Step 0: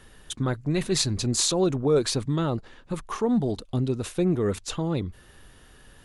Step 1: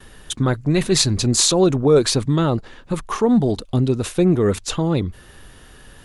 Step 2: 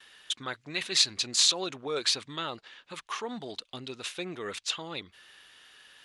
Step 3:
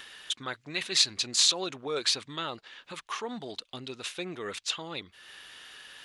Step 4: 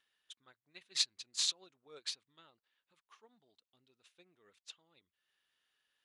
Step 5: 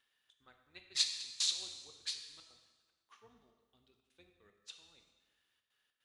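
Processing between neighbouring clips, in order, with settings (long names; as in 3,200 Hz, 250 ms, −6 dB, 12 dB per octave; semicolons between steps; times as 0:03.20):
noise gate with hold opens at −45 dBFS; level +7.5 dB
resonant band-pass 3,100 Hz, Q 1.1; level −1.5 dB
upward compression, threshold −40 dBFS
expander for the loud parts 2.5 to 1, over −37 dBFS; level −7.5 dB
sub-octave generator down 2 octaves, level −5 dB; gate pattern "xxx.xxxx.xx.x.xx" 150 BPM −24 dB; dense smooth reverb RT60 1.4 s, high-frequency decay 0.9×, DRR 4.5 dB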